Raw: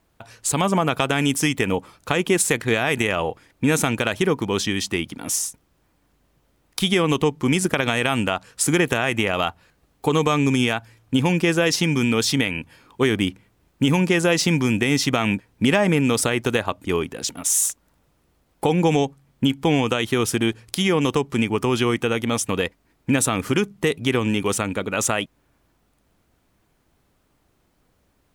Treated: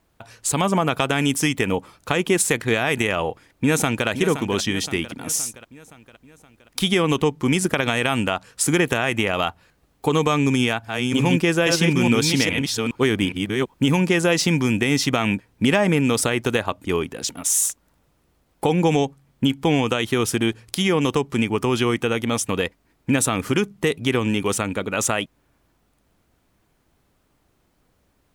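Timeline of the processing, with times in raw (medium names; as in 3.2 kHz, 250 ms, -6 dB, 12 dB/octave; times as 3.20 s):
3.27–4.08 s: echo throw 520 ms, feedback 55%, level -10.5 dB
10.42–14.13 s: chunks repeated in reverse 415 ms, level -3.5 dB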